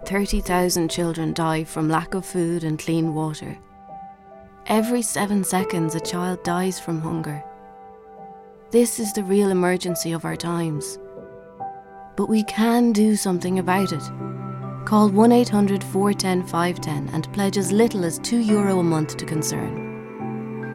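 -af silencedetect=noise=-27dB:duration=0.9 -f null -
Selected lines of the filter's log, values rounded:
silence_start: 3.53
silence_end: 4.66 | silence_duration: 1.13
silence_start: 7.38
silence_end: 8.73 | silence_duration: 1.35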